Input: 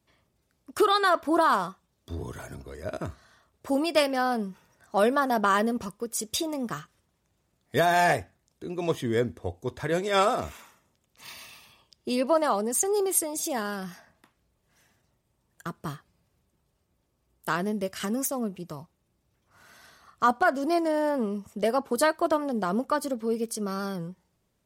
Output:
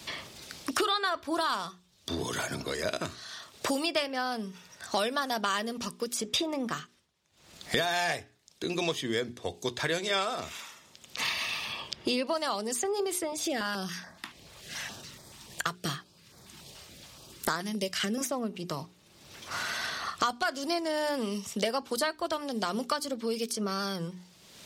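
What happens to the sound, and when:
6.65–7.78 s: dip -18.5 dB, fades 0.47 s
13.32–18.21 s: step-sequenced notch 7 Hz 260–2800 Hz
whole clip: peaking EQ 4.1 kHz +13 dB 2.2 oct; hum notches 60/120/180/240/300/360/420 Hz; three bands compressed up and down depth 100%; trim -7 dB

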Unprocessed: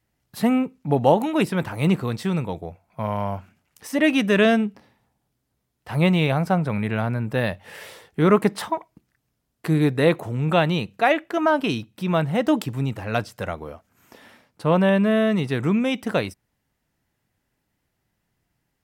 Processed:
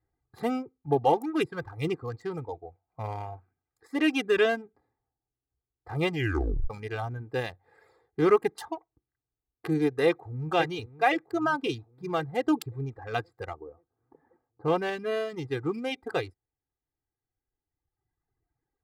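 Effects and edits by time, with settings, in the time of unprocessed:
6.10 s: tape stop 0.60 s
10.06–10.51 s: echo throw 530 ms, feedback 60%, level -7.5 dB
13.53–14.68 s: low-pass 1.2 kHz
whole clip: local Wiener filter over 15 samples; reverb removal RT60 1.9 s; comb 2.5 ms, depth 82%; trim -6.5 dB

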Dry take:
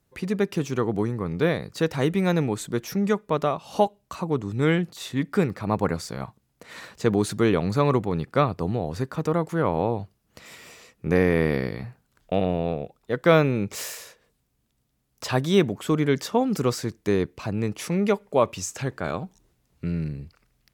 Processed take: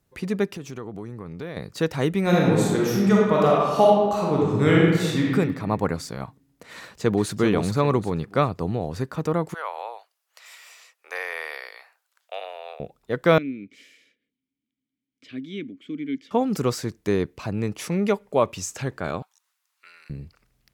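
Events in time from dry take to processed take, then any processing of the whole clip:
0.47–1.57 s: compression 3:1, threshold -34 dBFS
2.21–5.30 s: reverb throw, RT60 1.5 s, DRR -4.5 dB
6.78–7.39 s: echo throw 390 ms, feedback 30%, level -5.5 dB
9.54–12.80 s: Bessel high-pass 1 kHz, order 6
13.38–16.31 s: vowel filter i
19.22–20.10 s: Chebyshev high-pass 1.1 kHz, order 3

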